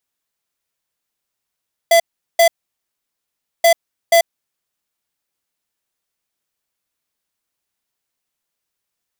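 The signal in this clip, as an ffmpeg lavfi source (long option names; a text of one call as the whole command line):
ffmpeg -f lavfi -i "aevalsrc='0.316*(2*lt(mod(673*t,1),0.5)-1)*clip(min(mod(mod(t,1.73),0.48),0.09-mod(mod(t,1.73),0.48))/0.005,0,1)*lt(mod(t,1.73),0.96)':duration=3.46:sample_rate=44100" out.wav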